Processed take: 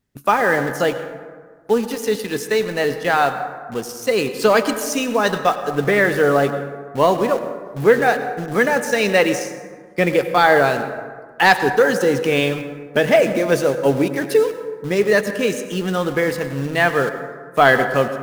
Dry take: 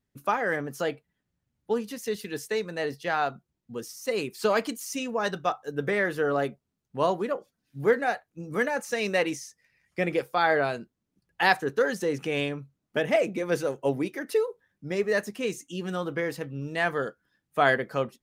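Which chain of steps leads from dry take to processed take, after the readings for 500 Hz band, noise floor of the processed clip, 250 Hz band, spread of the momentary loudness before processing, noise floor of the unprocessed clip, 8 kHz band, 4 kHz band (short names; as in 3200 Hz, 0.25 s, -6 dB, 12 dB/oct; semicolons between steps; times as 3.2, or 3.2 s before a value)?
+10.5 dB, -41 dBFS, +10.5 dB, 11 LU, -82 dBFS, +10.5 dB, +10.0 dB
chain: in parallel at -7 dB: bit-crush 6-bit; on the sum: soft clip -7.5 dBFS, distortion -24 dB; plate-style reverb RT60 1.7 s, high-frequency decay 0.4×, pre-delay 80 ms, DRR 9.5 dB; gain +7 dB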